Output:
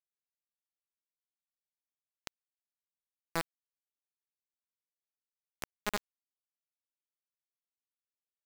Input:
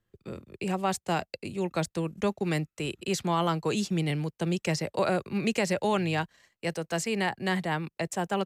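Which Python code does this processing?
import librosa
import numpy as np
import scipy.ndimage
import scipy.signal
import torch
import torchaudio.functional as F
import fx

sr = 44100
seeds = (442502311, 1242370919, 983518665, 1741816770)

y = fx.resonator_bank(x, sr, root=52, chord='major', decay_s=0.76)
y = np.maximum(y, 0.0)
y = fx.quant_dither(y, sr, seeds[0], bits=6, dither='none')
y = y * librosa.db_to_amplitude(12.0)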